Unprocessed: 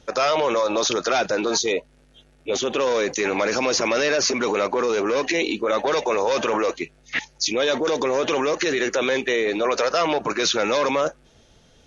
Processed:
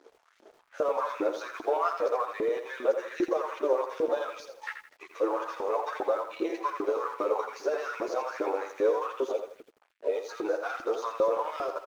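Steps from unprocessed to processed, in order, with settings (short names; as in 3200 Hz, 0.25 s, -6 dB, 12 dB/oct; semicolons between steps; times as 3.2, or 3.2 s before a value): whole clip reversed; compressor 2:1, threshold -47 dBFS, peak gain reduction 16.5 dB; band shelf 610 Hz +14 dB 2.8 oct; feedback echo 0.24 s, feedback 24%, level -15 dB; chorus voices 4, 0.28 Hz, delay 11 ms, depth 2.2 ms; crossover distortion -48 dBFS; transient shaper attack +2 dB, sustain -4 dB; LFO high-pass saw up 2.5 Hz 280–2400 Hz; lo-fi delay 83 ms, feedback 35%, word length 9-bit, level -8 dB; gain -5.5 dB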